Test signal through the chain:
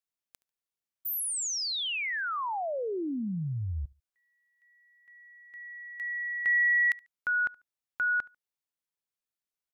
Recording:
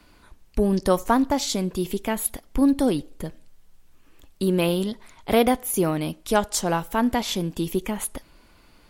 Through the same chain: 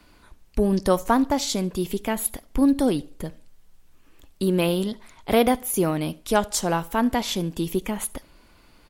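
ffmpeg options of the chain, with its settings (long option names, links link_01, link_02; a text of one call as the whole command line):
ffmpeg -i in.wav -af "aecho=1:1:72|144:0.0668|0.016" out.wav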